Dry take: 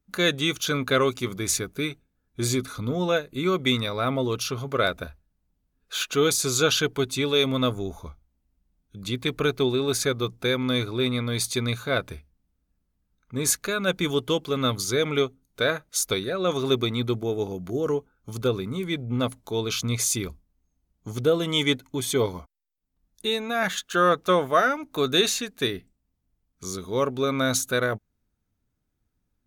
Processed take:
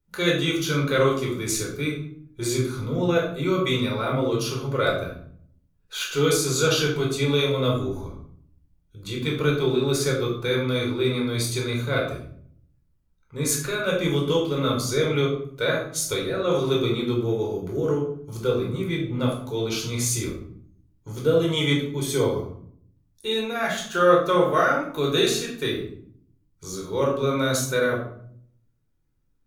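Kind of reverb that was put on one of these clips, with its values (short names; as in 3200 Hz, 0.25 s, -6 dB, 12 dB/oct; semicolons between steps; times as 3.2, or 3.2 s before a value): shoebox room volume 910 m³, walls furnished, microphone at 4.6 m; gain -5.5 dB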